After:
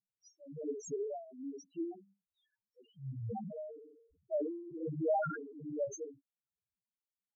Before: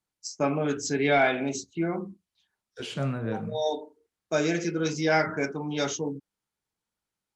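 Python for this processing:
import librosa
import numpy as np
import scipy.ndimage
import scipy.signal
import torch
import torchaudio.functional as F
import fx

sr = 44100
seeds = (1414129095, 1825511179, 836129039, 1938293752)

y = x * (1.0 - 0.95 / 2.0 + 0.95 / 2.0 * np.cos(2.0 * np.pi * 1.2 * (np.arange(len(x)) / sr)))
y = fx.dynamic_eq(y, sr, hz=280.0, q=2.2, threshold_db=-43.0, ratio=4.0, max_db=-4)
y = fx.spec_topn(y, sr, count=1)
y = fx.peak_eq(y, sr, hz=1900.0, db=5.5, octaves=2.1)
y = fx.sustainer(y, sr, db_per_s=59.0, at=(3.4, 5.85))
y = y * librosa.db_to_amplitude(1.5)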